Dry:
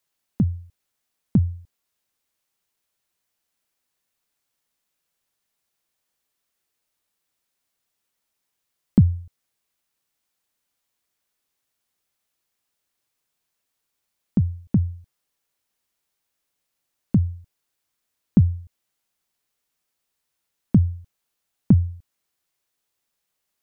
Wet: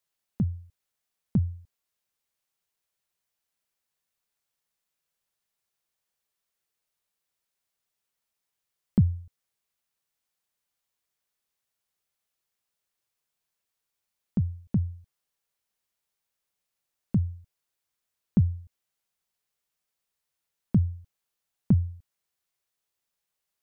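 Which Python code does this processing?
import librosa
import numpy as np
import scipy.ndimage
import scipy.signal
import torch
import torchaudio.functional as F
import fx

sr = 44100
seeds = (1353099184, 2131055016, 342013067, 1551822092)

y = fx.peak_eq(x, sr, hz=280.0, db=-7.0, octaves=0.33)
y = y * 10.0 ** (-5.5 / 20.0)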